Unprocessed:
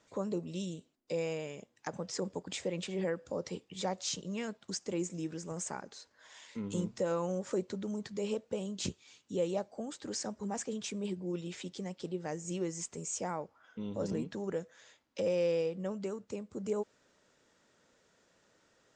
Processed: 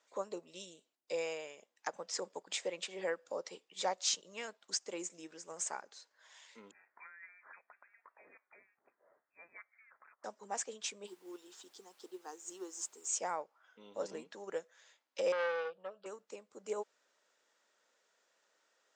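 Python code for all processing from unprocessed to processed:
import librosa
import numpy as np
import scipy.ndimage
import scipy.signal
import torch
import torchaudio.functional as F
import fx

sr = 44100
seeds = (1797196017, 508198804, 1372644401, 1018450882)

y = fx.chain(x, sr, fx.highpass(hz=1100.0, slope=24),
    fx.over_compress(threshold_db=-49.0, ratio=-1.0),
    fx.freq_invert(carrier_hz=2900), at=(6.71, 10.24))
y = fx.fixed_phaser(y, sr, hz=590.0, stages=6, at=(11.06, 13.07), fade=0.02)
y = fx.dmg_noise_colour(y, sr, seeds[0], colour='pink', level_db=-63.0, at=(11.06, 13.07), fade=0.02)
y = fx.chain(y, sr, fx.air_absorb(metres=84.0),
    fx.fixed_phaser(hz=1400.0, stages=8),
    fx.transformer_sat(knee_hz=960.0), at=(15.32, 16.06))
y = scipy.signal.sosfilt(scipy.signal.butter(2, 590.0, 'highpass', fs=sr, output='sos'), y)
y = fx.upward_expand(y, sr, threshold_db=-52.0, expansion=1.5)
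y = y * librosa.db_to_amplitude(4.5)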